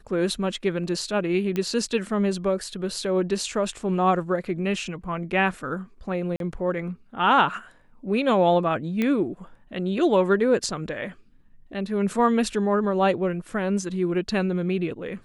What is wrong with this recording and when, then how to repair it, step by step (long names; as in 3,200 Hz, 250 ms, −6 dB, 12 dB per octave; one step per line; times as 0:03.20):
0:01.56: click −15 dBFS
0:06.36–0:06.40: drop-out 42 ms
0:09.02: click −13 dBFS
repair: click removal
repair the gap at 0:06.36, 42 ms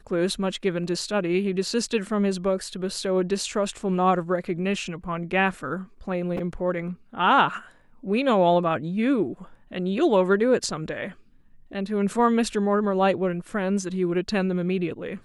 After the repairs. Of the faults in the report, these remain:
0:01.56: click